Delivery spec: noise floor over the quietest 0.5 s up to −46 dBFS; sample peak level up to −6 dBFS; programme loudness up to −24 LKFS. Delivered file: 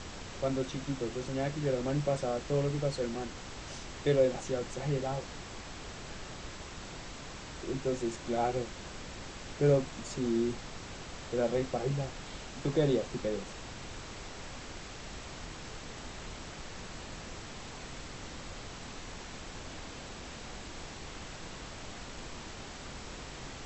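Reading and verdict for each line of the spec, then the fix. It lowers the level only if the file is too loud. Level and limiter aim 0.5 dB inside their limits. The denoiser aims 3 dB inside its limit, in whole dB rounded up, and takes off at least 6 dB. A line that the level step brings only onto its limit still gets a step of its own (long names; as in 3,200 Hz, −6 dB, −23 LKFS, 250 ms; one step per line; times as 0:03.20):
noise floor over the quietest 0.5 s −44 dBFS: out of spec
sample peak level −15.5 dBFS: in spec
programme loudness −36.5 LKFS: in spec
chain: broadband denoise 6 dB, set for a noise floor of −44 dBFS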